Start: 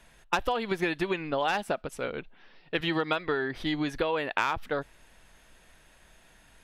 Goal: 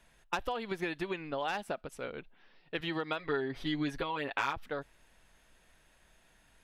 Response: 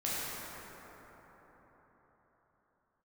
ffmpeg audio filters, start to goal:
-filter_complex "[0:a]asettb=1/sr,asplit=3[link_01][link_02][link_03];[link_01]atrim=end=3.184[link_04];[link_02]atrim=start=3.18:end=4.53,asetpts=PTS-STARTPTS,afade=type=in:duration=0.004:curve=qsin,afade=type=out:start_time=1.346:duration=0.004:curve=qsin,aecho=1:1:7.2:0.77,atrim=end_sample=59535[link_05];[link_03]atrim=start=4.526[link_06];[link_04][link_05]acrossfade=duration=0.004:curve1=hsin:curve2=qsin[link_07];[link_07][link_06]acrossfade=duration=0.004:curve1=qsin:curve2=hsin,volume=-7dB"

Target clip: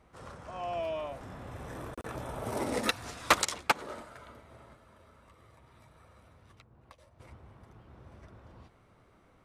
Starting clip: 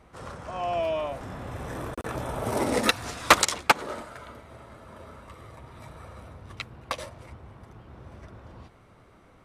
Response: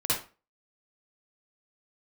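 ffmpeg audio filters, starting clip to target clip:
-filter_complex "[0:a]asettb=1/sr,asplit=3[link_01][link_02][link_03];[link_01]atrim=end=4.734[link_04];[link_02]atrim=start=4.73:end=7.2,asetpts=PTS-STARTPTS,afade=type=in:duration=0.004:curve=qsin,afade=type=out:start_time=2.466:duration=0.004:curve=qsin,acrossover=split=92|1400[link_05][link_06][link_07];[link_05]acompressor=threshold=-58dB:ratio=4[link_08];[link_06]acompressor=threshold=-53dB:ratio=4[link_09];[link_07]acompressor=threshold=-59dB:ratio=4[link_10];[link_08][link_09][link_10]amix=inputs=3:normalize=0[link_11];[link_03]atrim=start=7.196[link_12];[link_04][link_11]acrossfade=duration=0.004:curve1=hsin:curve2=qsin[link_13];[link_13][link_12]acrossfade=duration=0.004:curve1=qsin:curve2=hsin,volume=-7dB"

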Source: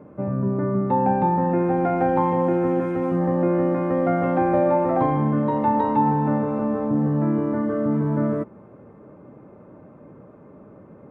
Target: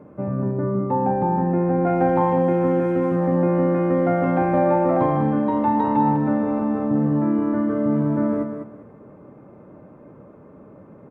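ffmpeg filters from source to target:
ffmpeg -i in.wav -filter_complex "[0:a]asettb=1/sr,asplit=3[link_01][link_02][link_03];[link_01]atrim=end=0.514[link_04];[link_02]atrim=start=0.51:end=1.87,asetpts=PTS-STARTPTS,afade=type=in:duration=0.004:curve=qsin,afade=type=out:start_time=1.356:duration=0.004:curve=qsin,lowpass=frequency=1300:poles=1[link_05];[link_03]atrim=start=1.866[link_06];[link_04][link_05]acrossfade=duration=0.004:curve1=hsin:curve2=qsin[link_07];[link_07][link_06]acrossfade=duration=0.004:curve1=qsin:curve2=hsin,aecho=1:1:201|402|603:0.422|0.0928|0.0204" out.wav

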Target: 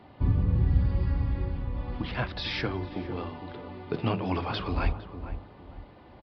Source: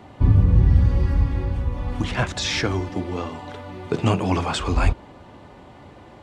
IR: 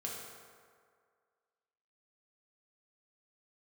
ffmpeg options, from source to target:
-filter_complex "[0:a]bandreject=frequency=50:width_type=h:width=6,bandreject=frequency=100:width_type=h:width=6,asplit=2[link_01][link_02];[link_02]adelay=458,lowpass=frequency=840:poles=1,volume=-9dB,asplit=2[link_03][link_04];[link_04]adelay=458,lowpass=frequency=840:poles=1,volume=0.37,asplit=2[link_05][link_06];[link_06]adelay=458,lowpass=frequency=840:poles=1,volume=0.37,asplit=2[link_07][link_08];[link_08]adelay=458,lowpass=frequency=840:poles=1,volume=0.37[link_09];[link_03][link_05][link_07][link_09]amix=inputs=4:normalize=0[link_10];[link_01][link_10]amix=inputs=2:normalize=0,aresample=11025,aresample=44100,volume=-7.5dB"

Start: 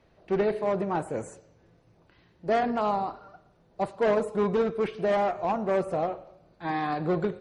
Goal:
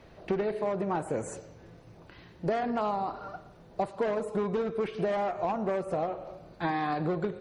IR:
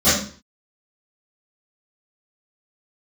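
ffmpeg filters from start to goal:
-af "acompressor=threshold=-36dB:ratio=10,volume=9dB"

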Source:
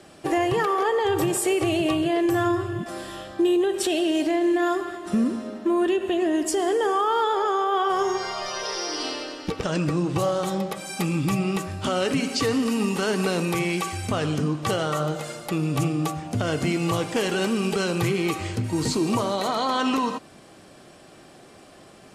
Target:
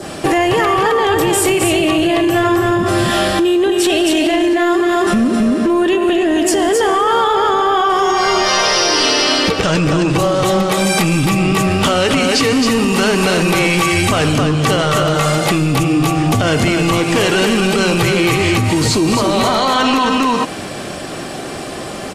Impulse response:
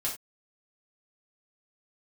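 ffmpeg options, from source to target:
-af "aecho=1:1:265:0.596,acompressor=threshold=-30dB:ratio=10,apsyclip=30.5dB,adynamicequalizer=threshold=0.112:dfrequency=2500:dqfactor=1.1:tfrequency=2500:tqfactor=1.1:attack=5:release=100:ratio=0.375:range=1.5:mode=boostabove:tftype=bell,volume=-9dB"

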